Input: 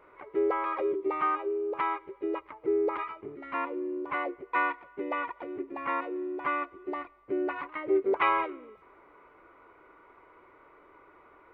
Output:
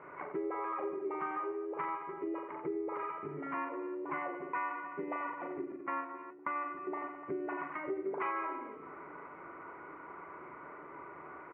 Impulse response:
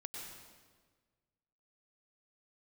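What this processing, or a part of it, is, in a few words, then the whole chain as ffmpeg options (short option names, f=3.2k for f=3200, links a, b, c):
bass amplifier: -filter_complex "[0:a]asettb=1/sr,asplit=3[a][b][c];[a]atrim=end=5.724[d];[b]atrim=start=5.72:end=6.57,asetpts=PTS-STARTPTS,afade=t=in:d=0.004:c=qsin,afade=t=out:st=0.846:d=0.004:c=qsin,agate=range=-36dB:threshold=-31dB:ratio=16:detection=peak[e];[c]atrim=start=6.566[f];[d][e]acrossfade=d=0.004:c1=hsin:c2=qsin[g];[g][f]acrossfade=d=0.004:c1=qsin:c2=hsin,aecho=1:1:40|88|145.6|214.7|297.7:0.631|0.398|0.251|0.158|0.1,acompressor=threshold=-46dB:ratio=3,highpass=f=80:w=0.5412,highpass=f=80:w=1.3066,equalizer=f=110:t=q:w=4:g=-8,equalizer=f=160:t=q:w=4:g=10,equalizer=f=490:t=q:w=4:g=-5,lowpass=f=2.2k:w=0.5412,lowpass=f=2.2k:w=1.3066,volume=6.5dB"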